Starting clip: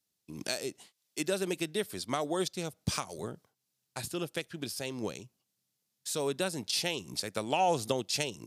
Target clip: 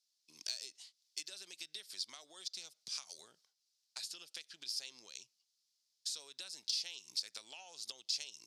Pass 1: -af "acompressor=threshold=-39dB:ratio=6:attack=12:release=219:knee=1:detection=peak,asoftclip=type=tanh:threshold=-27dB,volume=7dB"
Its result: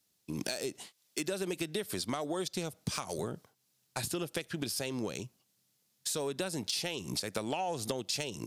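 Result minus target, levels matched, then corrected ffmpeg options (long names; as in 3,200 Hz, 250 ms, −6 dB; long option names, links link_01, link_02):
4,000 Hz band −5.0 dB
-af "acompressor=threshold=-39dB:ratio=6:attack=12:release=219:knee=1:detection=peak,bandpass=frequency=4900:width_type=q:width=2.4:csg=0,asoftclip=type=tanh:threshold=-27dB,volume=7dB"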